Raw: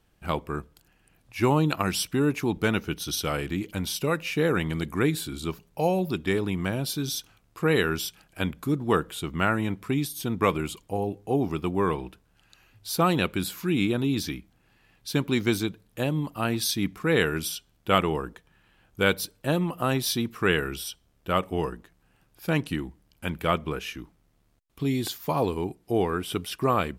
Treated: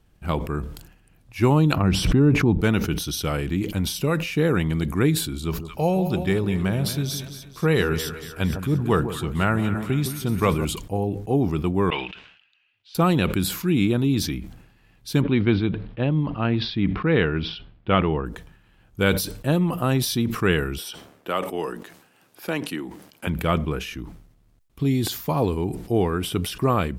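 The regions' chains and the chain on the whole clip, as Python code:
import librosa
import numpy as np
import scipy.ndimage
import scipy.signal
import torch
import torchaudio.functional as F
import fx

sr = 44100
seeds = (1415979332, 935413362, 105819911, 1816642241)

y = fx.chain(x, sr, fx.lowpass(hz=1400.0, slope=6),
    fx.low_shelf(hz=210.0, db=5.5),
    fx.pre_swell(db_per_s=47.0), at=(1.76, 2.61))
y = fx.chain(y, sr, fx.peak_eq(hz=280.0, db=-5.5, octaves=0.35),
    fx.echo_split(split_hz=1100.0, low_ms=160, high_ms=229, feedback_pct=52, wet_db=-11.0), at=(5.42, 10.65))
y = fx.chain(y, sr, fx.bandpass_q(hz=2800.0, q=3.0),
    fx.air_absorb(metres=130.0), at=(11.9, 12.95))
y = fx.chain(y, sr, fx.lowpass(hz=3400.0, slope=24),
    fx.resample_bad(factor=4, down='none', up='filtered'), at=(15.21, 18.26))
y = fx.chain(y, sr, fx.highpass(hz=340.0, slope=12),
    fx.band_squash(depth_pct=40), at=(20.78, 23.27))
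y = fx.low_shelf(y, sr, hz=250.0, db=8.5)
y = fx.sustainer(y, sr, db_per_s=76.0)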